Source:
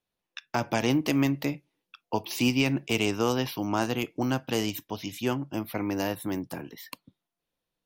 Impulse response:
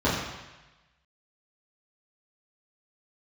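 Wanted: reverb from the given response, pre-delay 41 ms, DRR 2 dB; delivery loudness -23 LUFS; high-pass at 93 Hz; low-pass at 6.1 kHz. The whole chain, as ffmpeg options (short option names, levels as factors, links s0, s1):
-filter_complex "[0:a]highpass=93,lowpass=6100,asplit=2[s0][s1];[1:a]atrim=start_sample=2205,adelay=41[s2];[s1][s2]afir=irnorm=-1:irlink=0,volume=0.126[s3];[s0][s3]amix=inputs=2:normalize=0,volume=1.12"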